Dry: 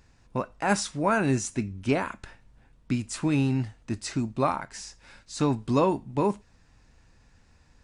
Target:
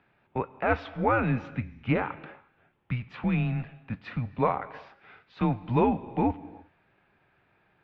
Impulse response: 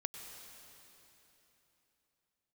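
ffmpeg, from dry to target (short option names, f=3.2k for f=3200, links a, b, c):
-filter_complex "[0:a]asplit=2[a][b];[1:a]atrim=start_sample=2205,afade=t=out:st=0.43:d=0.01,atrim=end_sample=19404[c];[b][c]afir=irnorm=-1:irlink=0,volume=-7.5dB[d];[a][d]amix=inputs=2:normalize=0,highpass=f=240:t=q:w=0.5412,highpass=f=240:t=q:w=1.307,lowpass=f=3.2k:t=q:w=0.5176,lowpass=f=3.2k:t=q:w=0.7071,lowpass=f=3.2k:t=q:w=1.932,afreqshift=-120,volume=-2dB"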